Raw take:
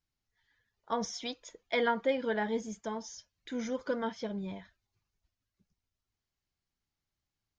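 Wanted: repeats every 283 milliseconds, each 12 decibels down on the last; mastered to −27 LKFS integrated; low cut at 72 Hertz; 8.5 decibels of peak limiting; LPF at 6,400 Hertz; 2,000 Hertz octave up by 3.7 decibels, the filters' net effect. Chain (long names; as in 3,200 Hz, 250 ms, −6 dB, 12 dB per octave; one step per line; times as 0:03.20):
high-pass filter 72 Hz
low-pass filter 6,400 Hz
parametric band 2,000 Hz +4.5 dB
brickwall limiter −24 dBFS
repeating echo 283 ms, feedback 25%, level −12 dB
level +9.5 dB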